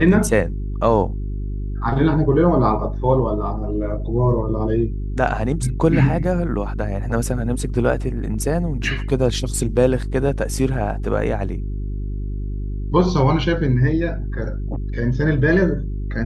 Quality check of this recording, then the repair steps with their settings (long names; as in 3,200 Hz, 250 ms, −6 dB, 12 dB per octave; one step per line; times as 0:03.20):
mains hum 50 Hz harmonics 8 −25 dBFS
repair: hum removal 50 Hz, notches 8